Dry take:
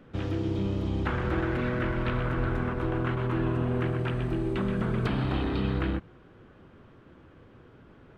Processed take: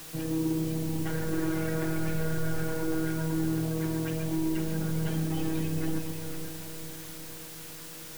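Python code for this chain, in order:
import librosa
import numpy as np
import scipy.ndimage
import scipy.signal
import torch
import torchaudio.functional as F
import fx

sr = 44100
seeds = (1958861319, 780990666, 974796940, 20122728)

y = fx.peak_eq(x, sr, hz=1200.0, db=-13.5, octaves=0.31)
y = fx.hum_notches(y, sr, base_hz=50, count=10)
y = fx.echo_diffused(y, sr, ms=453, feedback_pct=56, wet_db=-12)
y = fx.spec_gate(y, sr, threshold_db=-25, keep='strong')
y = fx.robotise(y, sr, hz=160.0)
y = 10.0 ** (-25.5 / 20.0) * np.tanh(y / 10.0 ** (-25.5 / 20.0))
y = fx.echo_multitap(y, sr, ms=(53, 71, 126, 144, 505), db=(-13.5, -12.0, -13.5, -13.0, -8.5))
y = fx.quant_dither(y, sr, seeds[0], bits=8, dither='triangular')
y = y * 10.0 ** (3.5 / 20.0)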